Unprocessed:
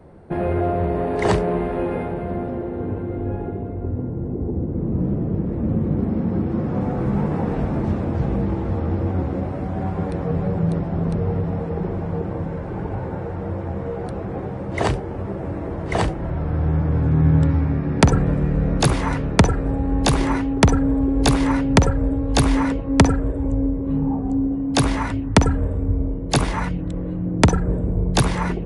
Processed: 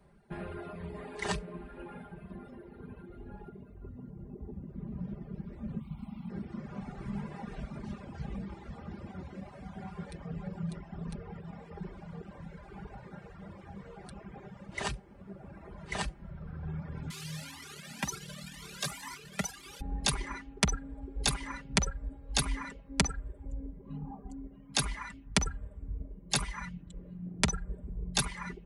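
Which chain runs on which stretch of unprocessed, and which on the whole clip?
5.80–6.30 s: treble shelf 3 kHz +7 dB + static phaser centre 1.7 kHz, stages 6
17.10–19.81 s: one-bit delta coder 64 kbps, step -22.5 dBFS + high-pass 150 Hz + Shepard-style flanger rising 2 Hz
whole clip: amplifier tone stack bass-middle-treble 5-5-5; comb 5 ms, depth 71%; reverb removal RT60 1.9 s

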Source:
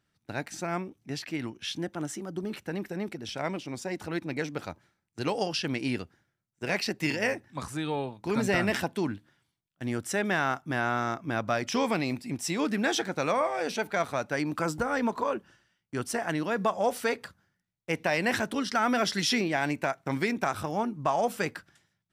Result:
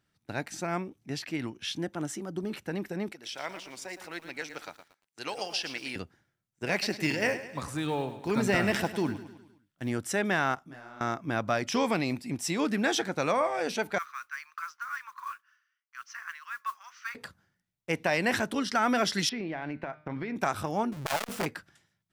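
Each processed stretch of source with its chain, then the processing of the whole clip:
3.12–5.96 s: high-pass 1.2 kHz 6 dB/octave + bit-crushed delay 115 ms, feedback 35%, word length 9-bit, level -10 dB
6.72–9.92 s: block-companded coder 7-bit + feedback delay 103 ms, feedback 52%, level -13 dB
10.55–11.01 s: compression 3:1, threshold -42 dBFS + hard clipper -31 dBFS + detune thickener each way 47 cents
13.98–17.15 s: Chebyshev band-pass 1.1–6.2 kHz, order 5 + peaking EQ 4 kHz -13.5 dB 1.5 oct + modulation noise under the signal 22 dB
19.29–20.36 s: compression 10:1, threshold -29 dBFS + distance through air 310 m + de-hum 152 Hz, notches 37
20.92–21.46 s: square wave that keeps the level + transformer saturation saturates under 1.2 kHz
whole clip: none

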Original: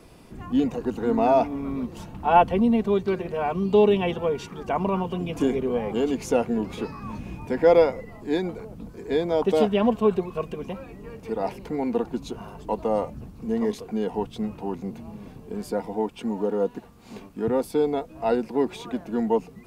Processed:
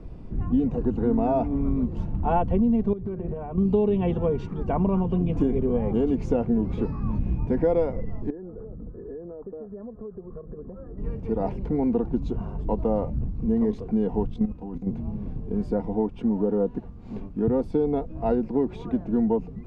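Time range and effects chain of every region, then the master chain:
2.93–3.58 s: low-pass 1.4 kHz 6 dB/octave + compression 16:1, threshold -31 dBFS
8.30–10.98 s: compression 8:1, threshold -35 dBFS + rippled Chebyshev low-pass 1.8 kHz, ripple 9 dB
14.34–14.87 s: treble shelf 6.2 kHz +9.5 dB + level held to a coarse grid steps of 13 dB + comb 4 ms, depth 41%
whole clip: low-pass 7.3 kHz 12 dB/octave; tilt EQ -4.5 dB/octave; compression 5:1, threshold -15 dBFS; trim -3.5 dB

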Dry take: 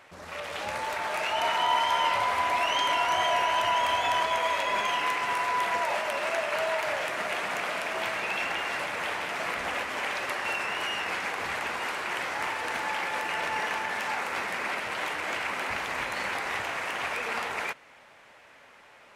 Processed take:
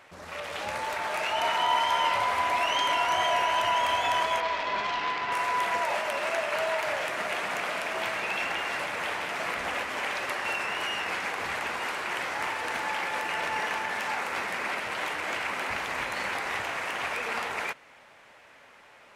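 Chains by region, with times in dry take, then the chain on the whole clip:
4.40–5.32 s: self-modulated delay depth 0.12 ms + distance through air 150 m + band-stop 550 Hz, Q 10
whole clip: none

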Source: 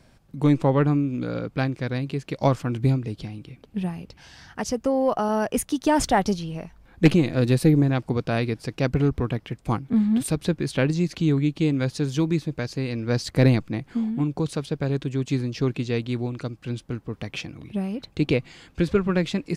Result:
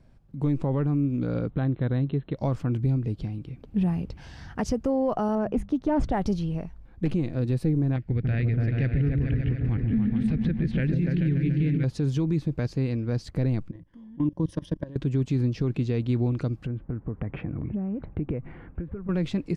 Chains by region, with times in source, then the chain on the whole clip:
1.50–2.37 s: brick-wall FIR low-pass 4.2 kHz + peaking EQ 2.4 kHz -9 dB 0.26 oct
5.35–6.12 s: low-pass 1.2 kHz 6 dB/octave + hum notches 50/100/150/200 Hz + loudspeaker Doppler distortion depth 0.13 ms
7.96–11.84 s: FFT filter 110 Hz 0 dB, 280 Hz -6 dB, 610 Hz -10 dB, 1.1 kHz -17 dB, 1.8 kHz +6 dB, 4.1 kHz -7 dB, 11 kHz -24 dB + delay with an opening low-pass 144 ms, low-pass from 400 Hz, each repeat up 2 oct, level -3 dB
13.71–14.96 s: rippled EQ curve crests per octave 1.2, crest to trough 13 dB + level held to a coarse grid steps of 22 dB
16.66–19.09 s: low-pass 1.9 kHz 24 dB/octave + compression, threshold -35 dBFS
whole clip: tilt EQ -2.5 dB/octave; level rider; peak limiter -8.5 dBFS; trim -8.5 dB

